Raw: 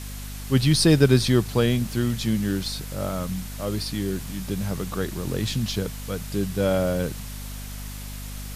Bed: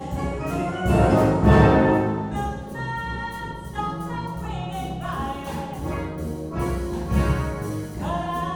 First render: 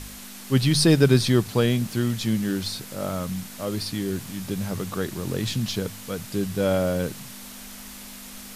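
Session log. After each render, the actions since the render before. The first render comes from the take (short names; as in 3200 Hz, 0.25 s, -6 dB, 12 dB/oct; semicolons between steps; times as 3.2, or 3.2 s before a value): de-hum 50 Hz, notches 3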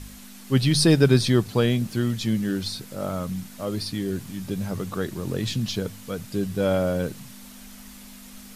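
denoiser 6 dB, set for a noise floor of -41 dBFS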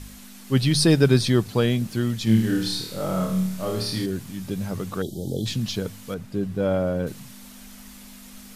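2.24–4.06 flutter echo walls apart 4.6 m, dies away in 0.63 s; 5.02–5.46 brick-wall FIR band-stop 870–3000 Hz; 6.14–7.07 high shelf 2700 Hz -11.5 dB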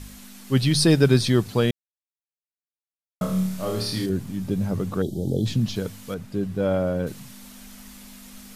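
1.71–3.21 mute; 4.09–5.76 tilt shelf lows +4.5 dB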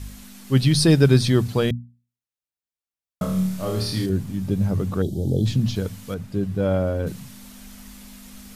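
bell 67 Hz +8.5 dB 2 oct; notches 60/120/180/240 Hz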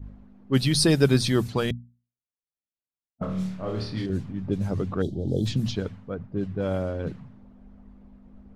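low-pass opened by the level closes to 490 Hz, open at -15 dBFS; harmonic-percussive split harmonic -7 dB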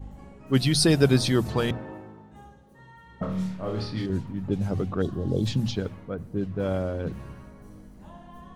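add bed -21.5 dB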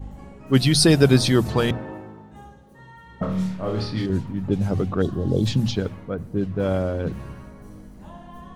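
gain +4.5 dB; limiter -3 dBFS, peak gain reduction 1 dB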